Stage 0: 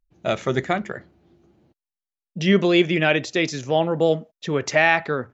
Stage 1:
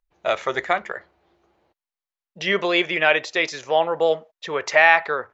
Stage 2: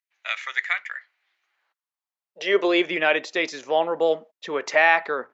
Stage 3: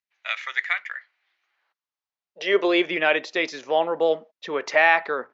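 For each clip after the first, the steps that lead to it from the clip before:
graphic EQ with 10 bands 125 Hz −11 dB, 250 Hz −10 dB, 500 Hz +5 dB, 1,000 Hz +9 dB, 2,000 Hz +6 dB, 4,000 Hz +4 dB; level −4.5 dB
high-pass filter sweep 2,000 Hz → 240 Hz, 0:01.46–0:02.88; level −3.5 dB
low-pass filter 6,200 Hz 24 dB per octave

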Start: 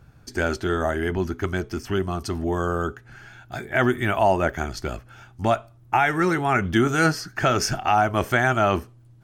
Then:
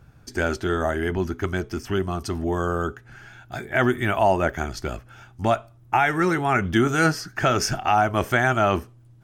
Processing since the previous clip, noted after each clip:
notch filter 4,300 Hz, Q 24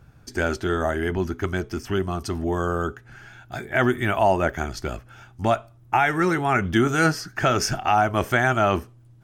no processing that can be heard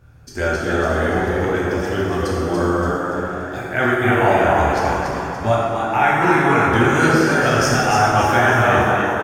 on a send: echo with shifted repeats 286 ms, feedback 46%, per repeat +100 Hz, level −5 dB
on the sum: dense smooth reverb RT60 2.4 s, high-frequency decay 0.55×, DRR −6 dB
level −2 dB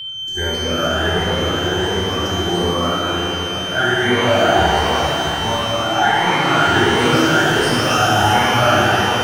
rippled gain that drifts along the octave scale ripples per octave 0.92, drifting +1.4 Hz, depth 16 dB
steady tone 3,100 Hz −22 dBFS
reverb with rising layers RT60 3.1 s, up +12 semitones, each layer −8 dB, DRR 0.5 dB
level −5.5 dB

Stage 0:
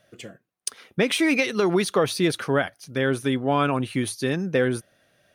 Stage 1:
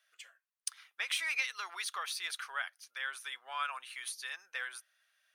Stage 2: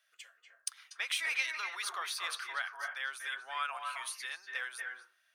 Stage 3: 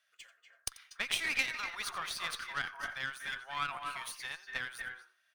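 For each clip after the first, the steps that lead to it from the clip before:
high-pass filter 1,100 Hz 24 dB per octave; level −8.5 dB
convolution reverb RT60 0.35 s, pre-delay 233 ms, DRR 3 dB
running median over 3 samples; single-tap delay 88 ms −16.5 dB; harmonic generator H 3 −15 dB, 4 −30 dB, 8 −34 dB, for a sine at −18.5 dBFS; level +5.5 dB

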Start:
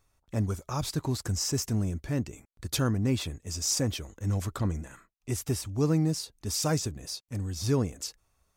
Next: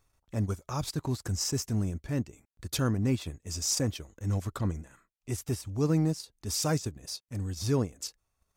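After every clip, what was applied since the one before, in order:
transient designer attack −3 dB, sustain −8 dB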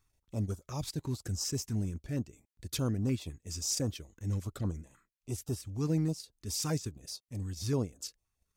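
notch on a step sequencer 9.7 Hz 580–2,100 Hz
level −3.5 dB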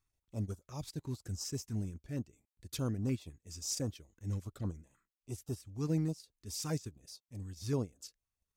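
expander for the loud parts 1.5 to 1, over −41 dBFS
level −2 dB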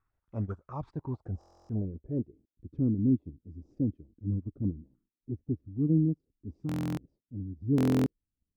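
low-pass filter sweep 1,400 Hz → 280 Hz, 0:00.49–0:02.71
buffer that repeats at 0:01.39/0:06.67/0:07.76, samples 1,024, times 12
level +4 dB

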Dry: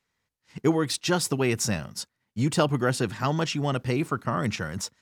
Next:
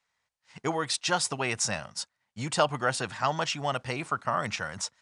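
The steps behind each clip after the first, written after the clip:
Butterworth low-pass 10,000 Hz 72 dB per octave
low shelf with overshoot 500 Hz −9 dB, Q 1.5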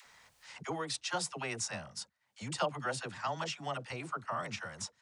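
upward compression, threshold −30 dBFS
all-pass dispersion lows, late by 60 ms, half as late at 500 Hz
level −8.5 dB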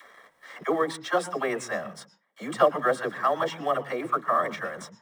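in parallel at −4 dB: log-companded quantiser 4 bits
on the sum: convolution reverb RT60 0.25 s, pre-delay 109 ms, DRR 18.5 dB
level −5 dB

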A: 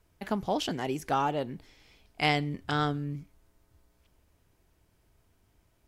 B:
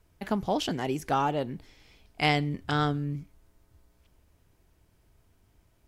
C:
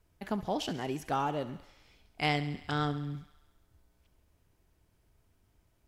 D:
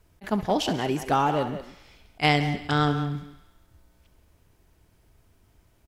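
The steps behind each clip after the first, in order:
low-shelf EQ 220 Hz +3 dB; level +1 dB
feedback echo with a high-pass in the loop 68 ms, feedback 71%, high-pass 490 Hz, level −14.5 dB; level −5 dB
far-end echo of a speakerphone 180 ms, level −10 dB; level that may rise only so fast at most 530 dB per second; level +8.5 dB

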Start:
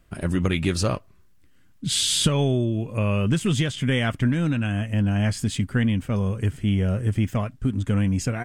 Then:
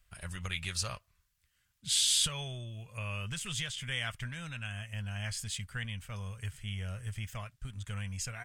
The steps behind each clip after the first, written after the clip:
guitar amp tone stack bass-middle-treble 10-0-10
level −3.5 dB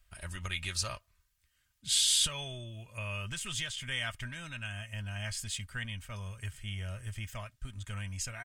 comb filter 3.2 ms, depth 41%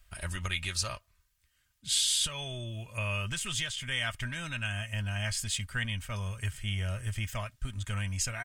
speech leveller within 4 dB 0.5 s
level +2 dB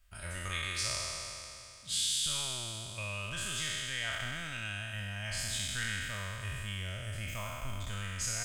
peak hold with a decay on every bin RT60 2.73 s
level −8 dB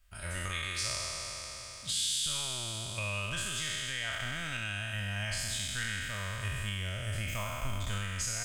camcorder AGC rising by 9.1 dB per second

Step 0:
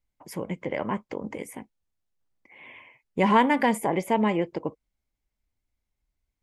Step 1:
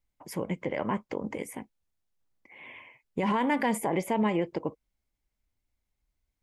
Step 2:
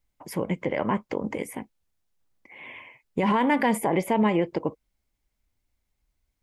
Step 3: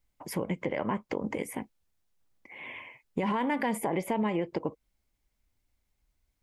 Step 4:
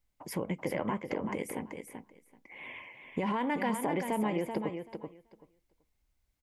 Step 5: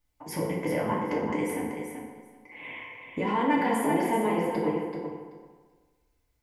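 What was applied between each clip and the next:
brickwall limiter −18.5 dBFS, peak gain reduction 10.5 dB
dynamic equaliser 7,000 Hz, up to −5 dB, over −55 dBFS, Q 1.4; level +4.5 dB
downward compressor 2.5 to 1, threshold −29 dBFS, peak gain reduction 7.5 dB
repeating echo 383 ms, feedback 15%, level −7 dB; level −2.5 dB
feedback delay network reverb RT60 1.4 s, low-frequency decay 0.8×, high-frequency decay 0.55×, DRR −4 dB

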